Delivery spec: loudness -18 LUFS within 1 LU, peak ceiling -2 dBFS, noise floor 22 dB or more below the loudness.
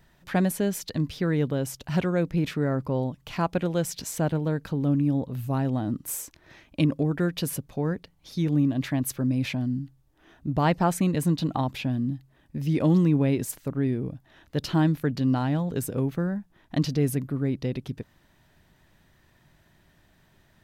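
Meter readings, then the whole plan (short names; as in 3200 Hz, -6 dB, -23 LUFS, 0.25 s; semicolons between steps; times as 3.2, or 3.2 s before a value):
loudness -27.0 LUFS; peak -10.0 dBFS; loudness target -18.0 LUFS
-> gain +9 dB; limiter -2 dBFS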